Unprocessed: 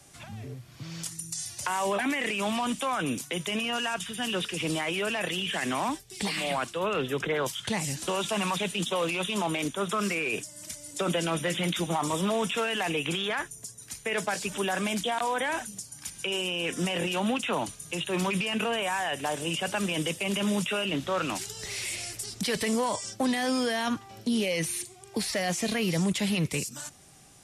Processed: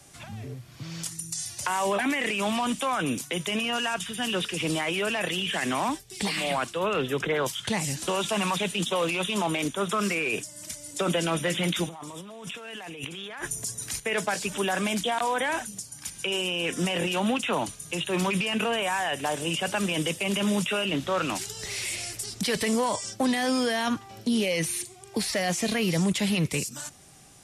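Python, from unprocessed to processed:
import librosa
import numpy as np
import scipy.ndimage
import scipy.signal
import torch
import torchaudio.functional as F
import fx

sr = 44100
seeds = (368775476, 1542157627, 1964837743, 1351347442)

y = fx.over_compress(x, sr, threshold_db=-40.0, ratio=-1.0, at=(11.88, 14.0))
y = y * 10.0 ** (2.0 / 20.0)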